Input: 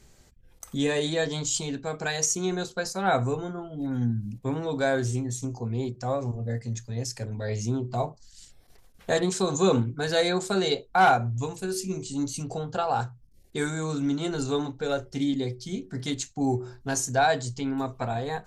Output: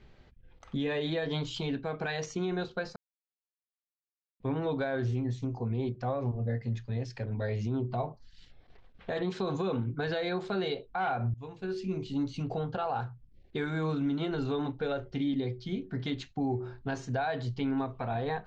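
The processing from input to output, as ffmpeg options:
ffmpeg -i in.wav -filter_complex "[0:a]asplit=4[link_01][link_02][link_03][link_04];[link_01]atrim=end=2.96,asetpts=PTS-STARTPTS,afade=type=out:start_time=2.956:duration=0.004:curve=hsin[link_05];[link_02]atrim=start=2.96:end=4.4,asetpts=PTS-STARTPTS,volume=0[link_06];[link_03]atrim=start=4.4:end=11.34,asetpts=PTS-STARTPTS,afade=type=in:duration=0.004:curve=hsin,afade=type=out:start_time=6.936:duration=0.004:curve=hsin:silence=0.0749894[link_07];[link_04]atrim=start=11.34,asetpts=PTS-STARTPTS,afade=type=in:duration=0.59:silence=0.0749894[link_08];[link_05][link_06][link_07][link_08]concat=n=4:v=0:a=1,lowpass=frequency=3600:width=0.5412,lowpass=frequency=3600:width=1.3066,alimiter=limit=-23.5dB:level=0:latency=1:release=109" out.wav

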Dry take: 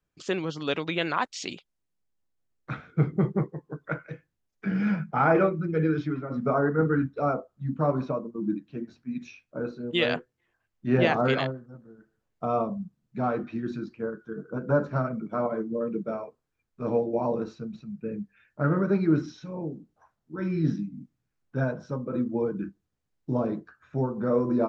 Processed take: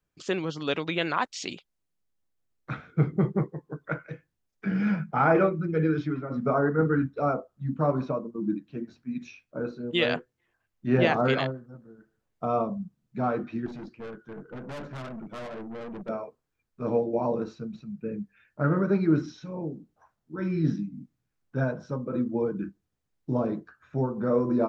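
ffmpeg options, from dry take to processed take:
ffmpeg -i in.wav -filter_complex "[0:a]asettb=1/sr,asplit=3[link_01][link_02][link_03];[link_01]atrim=end=13.664[link_04];[link_02]atrim=start=13.66:end=16.09,asetpts=PTS-STARTPTS,afade=type=in:duration=0.004:curve=qsin,afade=type=out:start_time=2.426:duration=0.004:curve=qsin,aeval=exprs='(tanh(63.1*val(0)+0.3)-tanh(0.3))/63.1':channel_layout=same[link_05];[link_03]atrim=start=16.086[link_06];[link_04][link_05]acrossfade=duration=0.004:curve1=hsin:curve2=qsin[link_07];[link_07][link_06]acrossfade=duration=0.004:curve1=qsin:curve2=hsin" out.wav

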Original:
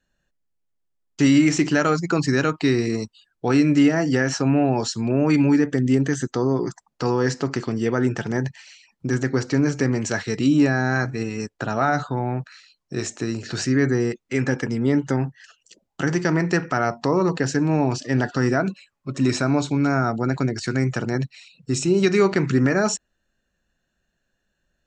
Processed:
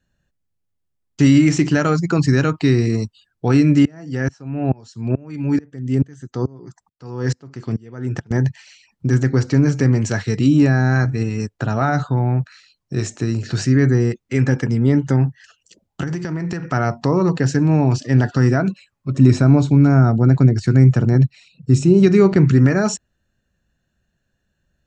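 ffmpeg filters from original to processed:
ffmpeg -i in.wav -filter_complex "[0:a]asettb=1/sr,asplit=3[link_01][link_02][link_03];[link_01]atrim=end=3.854[link_04];[link_02]atrim=start=3.85:end=8.31,asetpts=PTS-STARTPTS,afade=type=in:duration=0.004:curve=qsin,afade=type=out:start_time=4.456:duration=0.004:curve=qsin,aeval=exprs='val(0)*pow(10,-29*if(lt(mod(-2.3*n/s,1),2*abs(-2.3)/1000),1-mod(-2.3*n/s,1)/(2*abs(-2.3)/1000),(mod(-2.3*n/s,1)-2*abs(-2.3)/1000)/(1-2*abs(-2.3)/1000))/20)':channel_layout=same[link_05];[link_03]atrim=start=8.306[link_06];[link_04][link_05]acrossfade=duration=0.004:curve1=hsin:curve2=qsin[link_07];[link_07][link_06]acrossfade=duration=0.004:curve1=qsin:curve2=hsin,asettb=1/sr,asplit=3[link_08][link_09][link_10];[link_08]atrim=end=16.034[link_11];[link_09]atrim=start=16.03:end=16.68,asetpts=PTS-STARTPTS,afade=type=in:duration=0.004:curve=qsin,afade=type=out:start_time=0.646:duration=0.004:curve=qsin,acompressor=threshold=-25dB:ratio=5:attack=3.2:release=140:knee=1:detection=peak[link_12];[link_10]atrim=start=16.676[link_13];[link_11][link_12]acrossfade=duration=0.004:curve1=hsin:curve2=qsin[link_14];[link_14][link_13]acrossfade=duration=0.004:curve1=qsin:curve2=hsin,asettb=1/sr,asplit=3[link_15][link_16][link_17];[link_15]atrim=end=19.134[link_18];[link_16]atrim=start=19.13:end=22.49,asetpts=PTS-STARTPTS,afade=type=in:duration=0.004:curve=qsin,afade=type=out:start_time=3.356:duration=0.004:curve=qsin,tiltshelf=frequency=800:gain=4[link_19];[link_17]atrim=start=22.486[link_20];[link_18][link_19]acrossfade=duration=0.004:curve1=hsin:curve2=qsin[link_21];[link_21][link_20]acrossfade=duration=0.004:curve1=qsin:curve2=hsin,equalizer=frequency=97:width=0.69:gain=11.5" out.wav

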